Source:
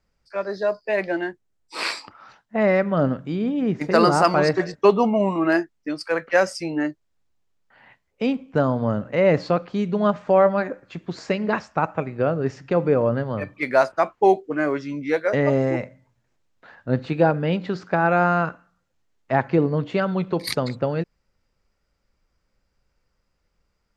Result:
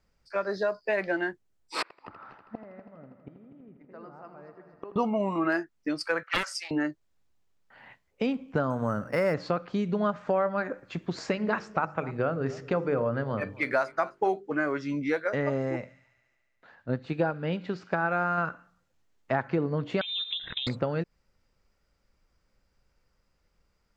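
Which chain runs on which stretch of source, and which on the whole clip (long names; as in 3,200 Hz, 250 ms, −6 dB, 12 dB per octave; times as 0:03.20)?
0:01.82–0:04.96: low-pass filter 1,700 Hz + gate with flip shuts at −23 dBFS, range −30 dB + echo machine with several playback heads 81 ms, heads first and third, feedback 64%, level −12.5 dB
0:06.23–0:06.71: high-pass filter 940 Hz 24 dB per octave + highs frequency-modulated by the lows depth 0.37 ms
0:08.70–0:09.34: parametric band 1,500 Hz +5.5 dB 1.3 octaves + linearly interpolated sample-rate reduction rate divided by 6×
0:11.35–0:14.52: mains-hum notches 50/100/150/200/250/300/350/400/450/500 Hz + single-tap delay 260 ms −21.5 dB
0:15.24–0:18.38: delay with a high-pass on its return 71 ms, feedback 78%, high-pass 2,100 Hz, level −17.5 dB + expander for the loud parts, over −29 dBFS
0:20.01–0:20.67: parametric band 1,900 Hz −6.5 dB 2.6 octaves + downward compressor, threshold −28 dBFS + voice inversion scrambler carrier 3,800 Hz
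whole clip: dynamic equaliser 1,400 Hz, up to +6 dB, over −38 dBFS, Q 2.1; downward compressor 3 to 1, threshold −26 dBFS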